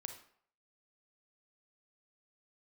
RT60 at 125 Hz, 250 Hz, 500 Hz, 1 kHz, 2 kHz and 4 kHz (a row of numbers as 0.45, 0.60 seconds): 0.45, 0.50, 0.60, 0.60, 0.50, 0.45 seconds